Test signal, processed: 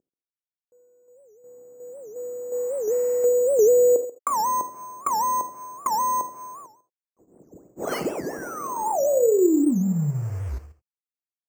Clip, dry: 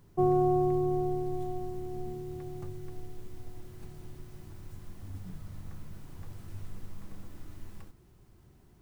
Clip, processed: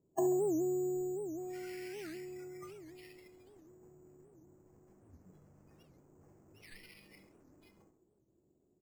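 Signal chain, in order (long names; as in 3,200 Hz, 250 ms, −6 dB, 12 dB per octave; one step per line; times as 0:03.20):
variable-slope delta modulation 16 kbit/s
low-pass that shuts in the quiet parts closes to 470 Hz, open at −27.5 dBFS
high-pass filter 130 Hz 6 dB per octave
treble cut that deepens with the level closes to 570 Hz, closed at −31 dBFS
noise reduction from a noise print of the clip's start 26 dB
parametric band 410 Hz +13 dB 2.2 octaves
downward compressor 1.5 to 1, threshold −31 dBFS
single-tap delay 135 ms −17 dB
reverb whose tail is shaped and stops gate 100 ms flat, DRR 8 dB
bad sample-rate conversion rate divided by 6×, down none, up hold
wow of a warped record 78 rpm, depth 250 cents
level +7 dB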